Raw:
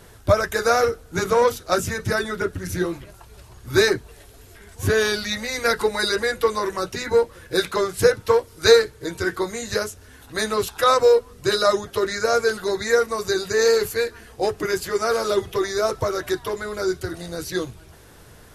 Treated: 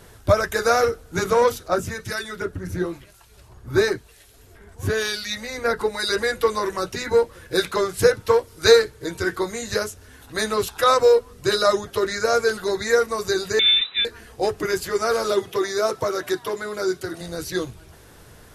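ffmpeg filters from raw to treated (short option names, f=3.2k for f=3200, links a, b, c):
-filter_complex "[0:a]asettb=1/sr,asplit=3[a][b][c];[a]atrim=end=1.684[d];[b]atrim=start=1.68:end=6.09,asetpts=PTS-STARTPTS,afade=t=in:d=0.004:c=qsin,afade=t=out:st=4.406:d=0.004:c=qsin,acrossover=split=1600[e][f];[e]aeval=exprs='val(0)*(1-0.7/2+0.7/2*cos(2*PI*1*n/s))':c=same[g];[f]aeval=exprs='val(0)*(1-0.7/2-0.7/2*cos(2*PI*1*n/s))':c=same[h];[g][h]amix=inputs=2:normalize=0[i];[c]atrim=start=6.086[j];[d][i]acrossfade=d=0.004:c1=hsin:c2=qsin[k];[k][j]acrossfade=d=0.004:c1=qsin:c2=hsin,asettb=1/sr,asplit=3[l][m][n];[l]atrim=end=13.594[o];[m]atrim=start=13.59:end=14.05,asetpts=PTS-STARTPTS,afade=t=in:d=0.004:c=qsin,afade=t=out:st=0.456:d=0.004:c=qsin,lowpass=f=3.4k:t=q:w=0.5098,lowpass=f=3.4k:t=q:w=0.6013,lowpass=f=3.4k:t=q:w=0.9,lowpass=f=3.4k:t=q:w=2.563,afreqshift=-4000[p];[n]atrim=start=14.046[q];[o][p]acrossfade=d=0.004:c1=hsin:c2=qsin[r];[r][q]acrossfade=d=0.004:c1=qsin:c2=hsin,asettb=1/sr,asplit=3[s][t][u];[s]atrim=end=15.324[v];[t]atrim=start=15.32:end=17.21,asetpts=PTS-STARTPTS,afade=t=in:d=0.004:c=qsin,afade=t=out:st=1.886:d=0.004:c=qsin,highpass=150[w];[u]atrim=start=17.206[x];[v][w]acrossfade=d=0.004:c1=hsin:c2=qsin[y];[y][x]acrossfade=d=0.004:c1=qsin:c2=hsin"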